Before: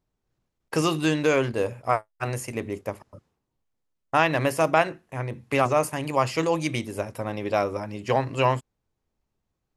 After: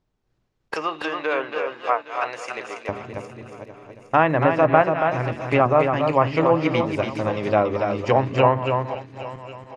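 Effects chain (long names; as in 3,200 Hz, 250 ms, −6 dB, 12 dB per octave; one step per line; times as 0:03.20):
feedback delay that plays each chunk backwards 407 ms, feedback 56%, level −13.5 dB
low-pass filter 5,800 Hz 12 dB per octave
treble cut that deepens with the level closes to 1,600 Hz, closed at −19 dBFS
0:00.74–0:02.89: high-pass filter 730 Hz 12 dB per octave
single-tap delay 281 ms −5.5 dB
level +4.5 dB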